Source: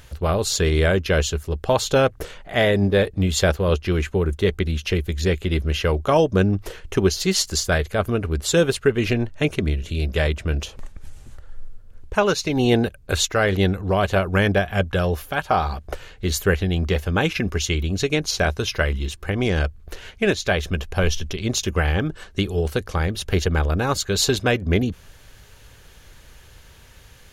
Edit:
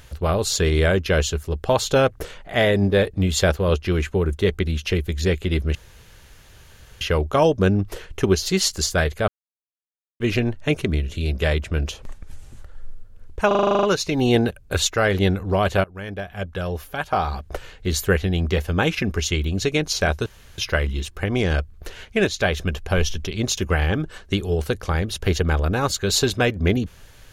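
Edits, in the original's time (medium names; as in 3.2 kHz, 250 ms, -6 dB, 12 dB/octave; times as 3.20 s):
5.75 s: insert room tone 1.26 s
8.02–8.94 s: mute
12.21 s: stutter 0.04 s, 10 plays
14.22–15.91 s: fade in, from -21.5 dB
18.64 s: insert room tone 0.32 s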